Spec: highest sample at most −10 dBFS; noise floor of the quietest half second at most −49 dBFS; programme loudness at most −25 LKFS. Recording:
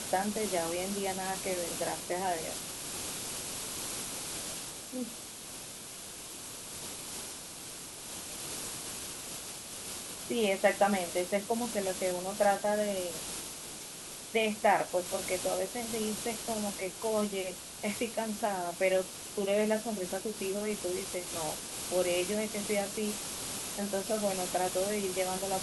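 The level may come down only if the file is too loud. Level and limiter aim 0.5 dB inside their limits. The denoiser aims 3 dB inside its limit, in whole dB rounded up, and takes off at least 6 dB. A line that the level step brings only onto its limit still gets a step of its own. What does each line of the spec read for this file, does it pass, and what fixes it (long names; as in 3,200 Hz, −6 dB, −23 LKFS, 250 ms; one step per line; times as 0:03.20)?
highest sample −13.5 dBFS: in spec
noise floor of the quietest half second −45 dBFS: out of spec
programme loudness −33.5 LKFS: in spec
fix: broadband denoise 7 dB, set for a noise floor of −45 dBFS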